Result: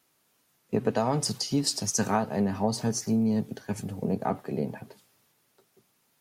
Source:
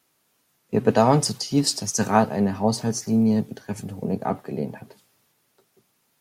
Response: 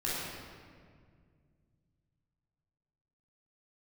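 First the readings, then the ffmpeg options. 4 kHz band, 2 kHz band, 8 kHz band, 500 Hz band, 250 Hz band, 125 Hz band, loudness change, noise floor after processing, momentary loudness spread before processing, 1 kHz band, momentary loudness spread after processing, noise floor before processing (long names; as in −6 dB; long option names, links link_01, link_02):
−4.0 dB, −6.0 dB, −3.0 dB, −6.5 dB, −5.5 dB, −5.5 dB, −5.5 dB, −70 dBFS, 12 LU, −7.5 dB, 8 LU, −69 dBFS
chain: -af "acompressor=threshold=-20dB:ratio=6,volume=-1.5dB"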